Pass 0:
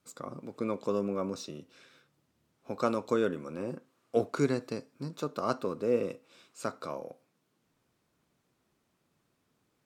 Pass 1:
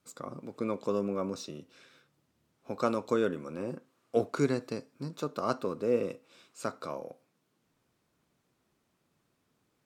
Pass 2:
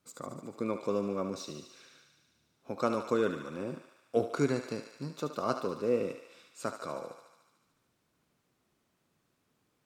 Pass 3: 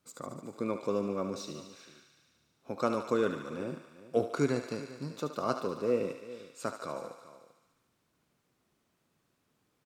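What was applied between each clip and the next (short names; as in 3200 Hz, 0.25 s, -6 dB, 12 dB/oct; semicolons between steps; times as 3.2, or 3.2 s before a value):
nothing audible
thinning echo 73 ms, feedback 77%, high-pass 620 Hz, level -8 dB; gain -1 dB
echo 0.394 s -16.5 dB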